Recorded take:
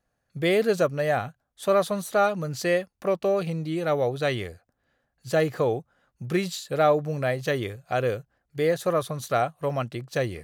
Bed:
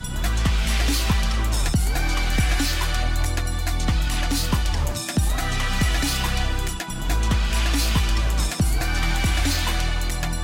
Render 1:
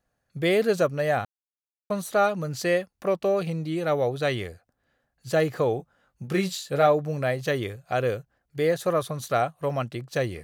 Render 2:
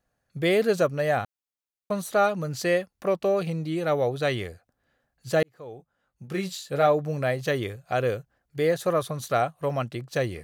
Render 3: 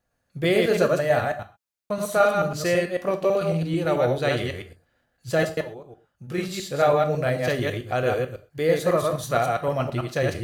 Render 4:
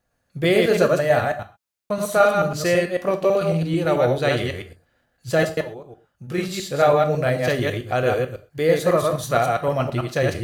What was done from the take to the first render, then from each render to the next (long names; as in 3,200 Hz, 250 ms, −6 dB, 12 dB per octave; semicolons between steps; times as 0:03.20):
0:01.25–0:01.90: silence; 0:05.77–0:06.87: double-tracking delay 21 ms −6.5 dB
0:05.43–0:07.05: fade in
delay that plays each chunk backwards 110 ms, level −2 dB; reverb whose tail is shaped and stops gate 150 ms falling, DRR 7 dB
level +3 dB